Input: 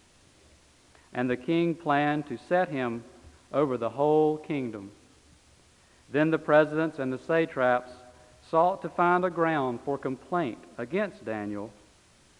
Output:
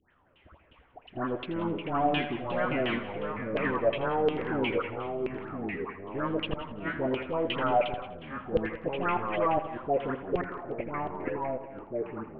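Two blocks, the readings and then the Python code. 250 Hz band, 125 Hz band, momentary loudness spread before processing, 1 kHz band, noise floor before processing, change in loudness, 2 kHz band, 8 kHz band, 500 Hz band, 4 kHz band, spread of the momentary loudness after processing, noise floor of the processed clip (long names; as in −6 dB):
−3.5 dB, −2.0 dB, 11 LU, −2.0 dB, −60 dBFS, −3.5 dB, −2.5 dB, can't be measured, −3.0 dB, +5.0 dB, 9 LU, −62 dBFS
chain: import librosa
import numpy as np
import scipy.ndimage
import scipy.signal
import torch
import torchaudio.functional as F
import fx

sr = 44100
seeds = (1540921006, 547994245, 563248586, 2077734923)

y = fx.tracing_dist(x, sr, depth_ms=0.48)
y = fx.high_shelf(y, sr, hz=4900.0, db=-7.0)
y = fx.level_steps(y, sr, step_db=19)
y = fx.dispersion(y, sr, late='highs', ms=127.0, hz=1600.0)
y = fx.filter_sweep_lowpass(y, sr, from_hz=3200.0, to_hz=360.0, start_s=10.24, end_s=10.98, q=5.7)
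y = fx.gate_flip(y, sr, shuts_db=-26.0, range_db=-28)
y = fx.filter_lfo_lowpass(y, sr, shape='saw_down', hz=2.8, low_hz=460.0, high_hz=3000.0, q=5.8)
y = y + 10.0 ** (-15.5 / 20.0) * np.pad(y, (int(183 * sr / 1000.0), 0))[:len(y)]
y = fx.echo_pitch(y, sr, ms=167, semitones=-3, count=3, db_per_echo=-6.0)
y = fx.air_absorb(y, sr, metres=160.0)
y = fx.echo_feedback(y, sr, ms=82, feedback_pct=41, wet_db=-12.5)
y = F.gain(torch.from_numpy(y), 5.5).numpy()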